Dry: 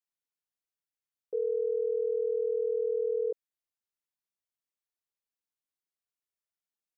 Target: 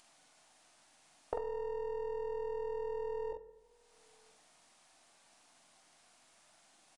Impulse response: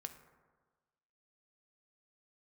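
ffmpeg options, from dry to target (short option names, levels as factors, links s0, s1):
-filter_complex "[0:a]aeval=exprs='if(lt(val(0),0),0.447*val(0),val(0))':c=same,equalizer=f=300:w=0.87:g=13.5,acompressor=threshold=0.0112:ratio=8,lowshelf=f=550:t=q:w=3:g=-7,acompressor=mode=upward:threshold=0.00112:ratio=2.5,asplit=2[s0][s1];[s1]adelay=45,volume=0.596[s2];[s0][s2]amix=inputs=2:normalize=0,asplit=2[s3][s4];[s4]adelay=991.3,volume=0.0316,highshelf=f=4000:g=-22.3[s5];[s3][s5]amix=inputs=2:normalize=0,asplit=2[s6][s7];[1:a]atrim=start_sample=2205[s8];[s7][s8]afir=irnorm=-1:irlink=0,volume=2.24[s9];[s6][s9]amix=inputs=2:normalize=0,aresample=22050,aresample=44100,volume=1.58"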